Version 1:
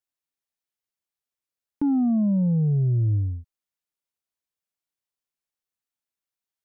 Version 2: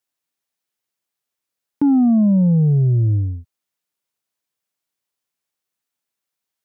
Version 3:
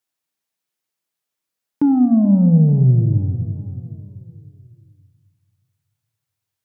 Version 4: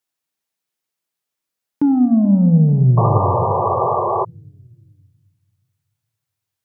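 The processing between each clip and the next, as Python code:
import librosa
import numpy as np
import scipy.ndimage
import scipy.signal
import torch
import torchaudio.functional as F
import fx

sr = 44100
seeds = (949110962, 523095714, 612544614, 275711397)

y1 = scipy.signal.sosfilt(scipy.signal.butter(2, 99.0, 'highpass', fs=sr, output='sos'), x)
y1 = F.gain(torch.from_numpy(y1), 7.5).numpy()
y2 = fx.echo_feedback(y1, sr, ms=437, feedback_pct=49, wet_db=-16.0)
y2 = fx.room_shoebox(y2, sr, seeds[0], volume_m3=1000.0, walls='mixed', distance_m=0.59)
y3 = fx.spec_paint(y2, sr, seeds[1], shape='noise', start_s=2.97, length_s=1.28, low_hz=350.0, high_hz=1200.0, level_db=-18.0)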